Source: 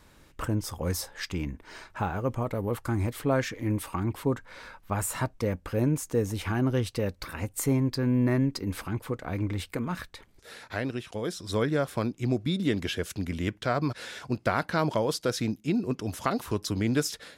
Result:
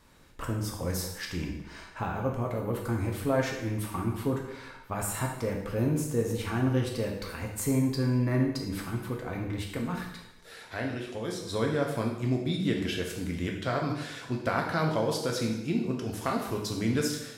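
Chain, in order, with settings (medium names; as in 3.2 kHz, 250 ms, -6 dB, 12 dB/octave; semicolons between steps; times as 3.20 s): plate-style reverb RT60 0.89 s, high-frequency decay 0.95×, DRR 0 dB; trim -4 dB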